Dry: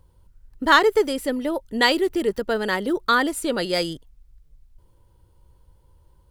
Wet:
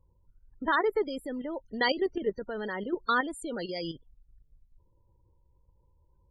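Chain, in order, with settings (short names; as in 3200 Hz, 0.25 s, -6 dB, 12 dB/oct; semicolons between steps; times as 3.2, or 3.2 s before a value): loudest bins only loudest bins 32; level quantiser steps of 10 dB; gain -4.5 dB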